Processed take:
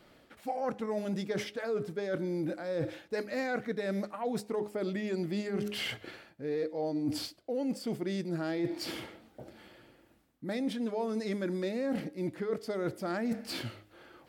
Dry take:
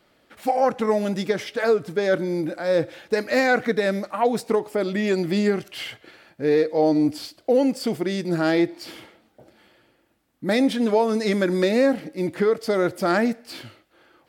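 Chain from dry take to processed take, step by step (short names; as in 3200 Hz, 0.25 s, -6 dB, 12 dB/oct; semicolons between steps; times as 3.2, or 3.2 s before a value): low shelf 380 Hz +5 dB; de-hum 103.5 Hz, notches 4; reverse; compressor 6:1, threshold -32 dBFS, peak gain reduction 18 dB; reverse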